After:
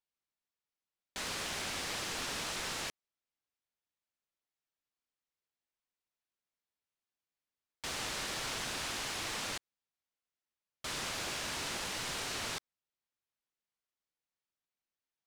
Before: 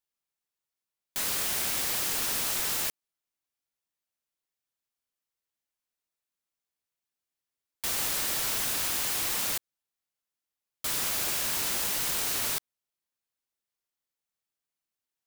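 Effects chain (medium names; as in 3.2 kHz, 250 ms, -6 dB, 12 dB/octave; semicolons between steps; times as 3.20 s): distance through air 78 m; trim -2.5 dB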